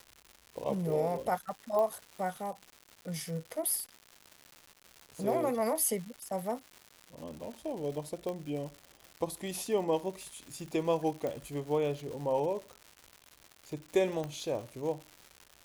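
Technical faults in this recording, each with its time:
surface crackle 250 per second −40 dBFS
0:01.79: click −21 dBFS
0:08.29: click −25 dBFS
0:11.27: click −24 dBFS
0:14.24: click −24 dBFS

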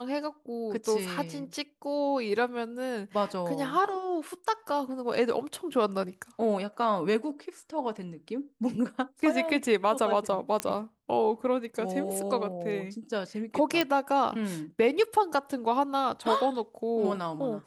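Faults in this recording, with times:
0:10.60: click −13 dBFS
0:13.81: click −11 dBFS

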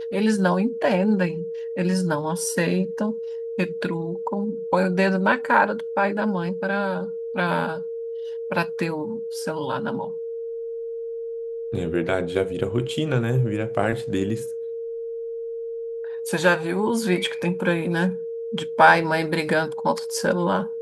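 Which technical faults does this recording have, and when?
whistle 460 Hz −28 dBFS

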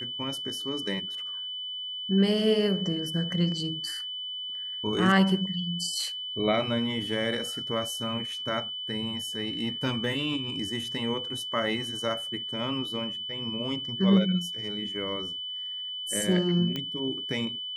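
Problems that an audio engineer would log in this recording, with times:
whistle 3,000 Hz −33 dBFS
0:16.76: click −18 dBFS

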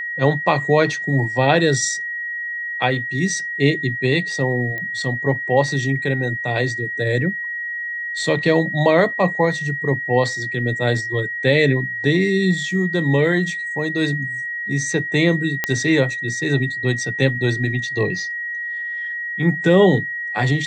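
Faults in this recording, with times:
whistle 1,900 Hz −24 dBFS
0:04.78: click −16 dBFS
0:15.64: click −4 dBFS

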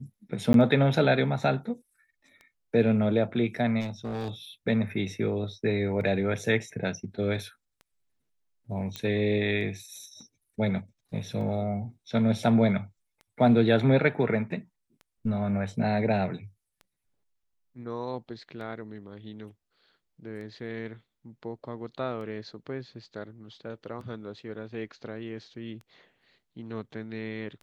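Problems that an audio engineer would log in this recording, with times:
scratch tick 33 1/3 rpm −33 dBFS
0:00.53–0:00.54: drop-out 12 ms
0:03.80–0:04.30: clipping −29.5 dBFS
0:08.96: click −18 dBFS

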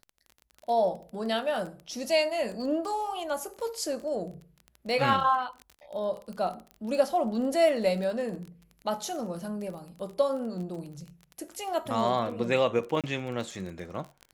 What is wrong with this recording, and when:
surface crackle 24 per second −36 dBFS
0:06.71: click −30 dBFS
0:13.01–0:13.04: drop-out 27 ms

